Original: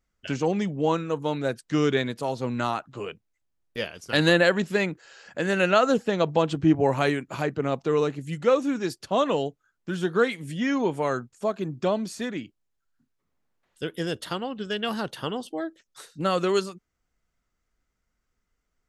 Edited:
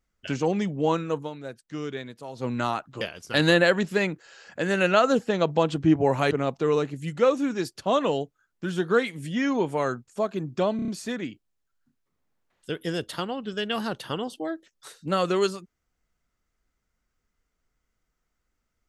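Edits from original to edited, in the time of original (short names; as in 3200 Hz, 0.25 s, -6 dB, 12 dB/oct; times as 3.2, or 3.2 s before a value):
1.17–2.46 dip -10.5 dB, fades 0.13 s
3.01–3.8 cut
7.1–7.56 cut
12.01 stutter 0.03 s, 5 plays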